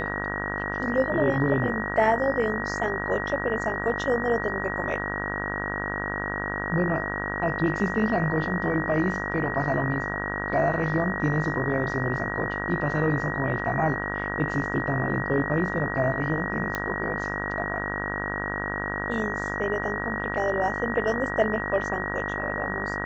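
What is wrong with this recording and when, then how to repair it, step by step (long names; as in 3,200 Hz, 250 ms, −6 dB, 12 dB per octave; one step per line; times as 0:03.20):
mains buzz 50 Hz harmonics 35 −32 dBFS
whistle 1,900 Hz −31 dBFS
0:16.75: click −13 dBFS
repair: click removal
hum removal 50 Hz, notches 35
notch filter 1,900 Hz, Q 30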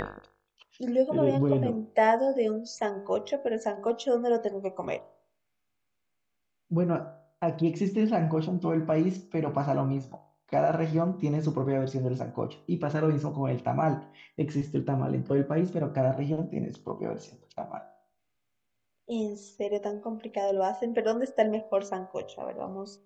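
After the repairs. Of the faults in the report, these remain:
none of them is left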